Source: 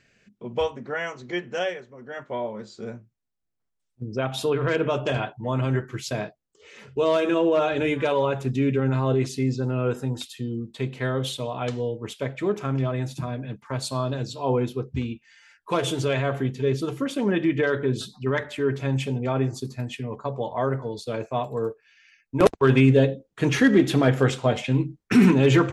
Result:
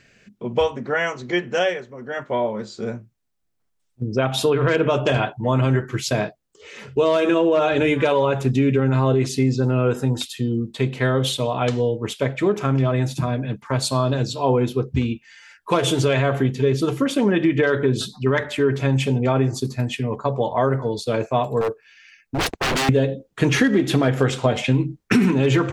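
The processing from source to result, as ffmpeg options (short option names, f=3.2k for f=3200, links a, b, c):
-filter_complex "[0:a]asettb=1/sr,asplit=3[a][b][c];[a]atrim=end=21.614[d];[b]atrim=start=21.61:end=22.89,asetpts=PTS-STARTPTS,afade=t=in:d=0.004:c=qsin,afade=t=out:st=1.276:d=0.004:c=qsin,aeval=exprs='0.0668*(abs(mod(val(0)/0.0668+3,4)-2)-1)':c=same[e];[c]atrim=start=22.886[f];[d][e]acrossfade=d=0.004:c1=hsin:c2=qsin[g];[g][f]acrossfade=d=0.004:c1=qsin:c2=hsin,acompressor=threshold=-21dB:ratio=10,volume=7.5dB"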